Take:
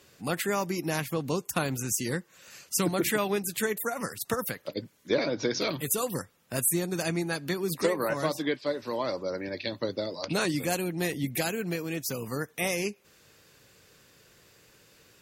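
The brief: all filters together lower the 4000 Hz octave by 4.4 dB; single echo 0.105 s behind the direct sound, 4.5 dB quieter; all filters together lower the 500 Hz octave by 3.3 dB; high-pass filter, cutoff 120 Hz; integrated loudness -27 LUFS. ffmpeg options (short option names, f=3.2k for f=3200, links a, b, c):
-af "highpass=120,equalizer=f=500:t=o:g=-4,equalizer=f=4k:t=o:g=-5.5,aecho=1:1:105:0.596,volume=3.5dB"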